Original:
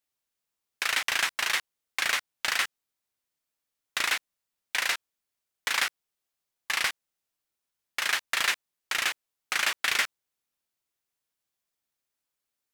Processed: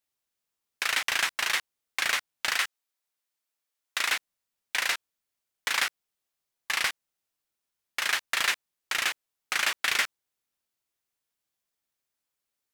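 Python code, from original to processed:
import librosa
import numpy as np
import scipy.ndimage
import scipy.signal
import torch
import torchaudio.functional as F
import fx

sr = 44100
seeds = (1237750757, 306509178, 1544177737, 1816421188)

y = fx.highpass(x, sr, hz=480.0, slope=6, at=(2.57, 4.08))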